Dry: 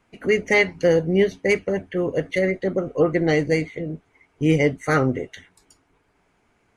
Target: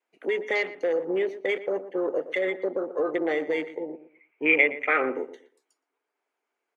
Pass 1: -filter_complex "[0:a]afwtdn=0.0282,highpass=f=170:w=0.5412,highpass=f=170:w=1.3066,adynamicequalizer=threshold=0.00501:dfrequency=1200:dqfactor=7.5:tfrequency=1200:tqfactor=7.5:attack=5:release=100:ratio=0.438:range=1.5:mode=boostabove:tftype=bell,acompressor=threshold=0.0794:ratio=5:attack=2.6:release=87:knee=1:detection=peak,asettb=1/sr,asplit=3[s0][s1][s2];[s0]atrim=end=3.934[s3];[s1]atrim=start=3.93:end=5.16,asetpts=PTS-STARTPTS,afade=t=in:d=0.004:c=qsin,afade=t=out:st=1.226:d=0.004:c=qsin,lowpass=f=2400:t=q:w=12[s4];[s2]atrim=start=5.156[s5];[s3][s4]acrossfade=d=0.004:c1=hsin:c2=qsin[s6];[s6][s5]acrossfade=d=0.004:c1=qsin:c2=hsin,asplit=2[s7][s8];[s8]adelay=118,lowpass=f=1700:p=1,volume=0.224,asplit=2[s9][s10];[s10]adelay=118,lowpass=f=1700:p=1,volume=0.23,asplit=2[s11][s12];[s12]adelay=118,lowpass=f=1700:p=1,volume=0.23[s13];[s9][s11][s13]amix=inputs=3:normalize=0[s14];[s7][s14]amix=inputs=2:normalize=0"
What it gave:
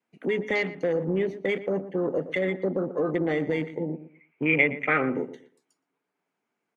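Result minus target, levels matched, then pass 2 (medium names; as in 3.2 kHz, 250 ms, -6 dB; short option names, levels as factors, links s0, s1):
125 Hz band +19.5 dB
-filter_complex "[0:a]afwtdn=0.0282,highpass=f=350:w=0.5412,highpass=f=350:w=1.3066,adynamicequalizer=threshold=0.00501:dfrequency=1200:dqfactor=7.5:tfrequency=1200:tqfactor=7.5:attack=5:release=100:ratio=0.438:range=1.5:mode=boostabove:tftype=bell,acompressor=threshold=0.0794:ratio=5:attack=2.6:release=87:knee=1:detection=peak,asettb=1/sr,asplit=3[s0][s1][s2];[s0]atrim=end=3.934[s3];[s1]atrim=start=3.93:end=5.16,asetpts=PTS-STARTPTS,afade=t=in:d=0.004:c=qsin,afade=t=out:st=1.226:d=0.004:c=qsin,lowpass=f=2400:t=q:w=12[s4];[s2]atrim=start=5.156[s5];[s3][s4]acrossfade=d=0.004:c1=hsin:c2=qsin[s6];[s6][s5]acrossfade=d=0.004:c1=qsin:c2=hsin,asplit=2[s7][s8];[s8]adelay=118,lowpass=f=1700:p=1,volume=0.224,asplit=2[s9][s10];[s10]adelay=118,lowpass=f=1700:p=1,volume=0.23,asplit=2[s11][s12];[s12]adelay=118,lowpass=f=1700:p=1,volume=0.23[s13];[s9][s11][s13]amix=inputs=3:normalize=0[s14];[s7][s14]amix=inputs=2:normalize=0"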